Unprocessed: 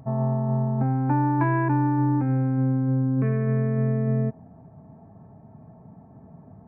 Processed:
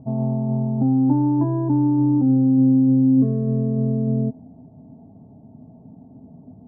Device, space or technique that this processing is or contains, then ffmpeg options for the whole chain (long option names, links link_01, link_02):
under water: -af "lowpass=frequency=770:width=0.5412,lowpass=frequency=770:width=1.3066,equalizer=frequency=260:width_type=o:width=0.42:gain=11"